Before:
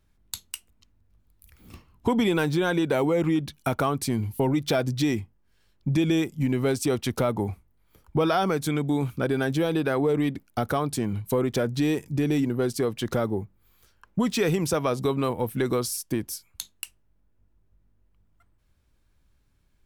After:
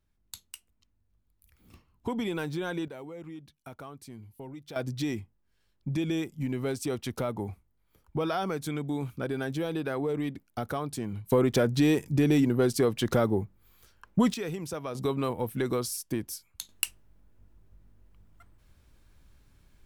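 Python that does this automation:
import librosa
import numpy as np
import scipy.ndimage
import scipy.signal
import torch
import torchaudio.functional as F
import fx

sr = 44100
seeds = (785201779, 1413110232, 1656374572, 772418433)

y = fx.gain(x, sr, db=fx.steps((0.0, -9.0), (2.88, -19.5), (4.76, -7.0), (11.32, 1.0), (14.34, -11.0), (14.95, -4.0), (16.69, 7.0)))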